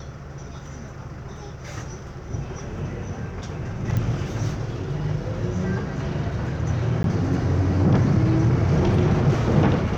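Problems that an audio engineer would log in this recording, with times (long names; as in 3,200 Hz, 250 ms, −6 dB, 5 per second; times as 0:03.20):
0:03.97: click −14 dBFS
0:07.03–0:07.04: drop-out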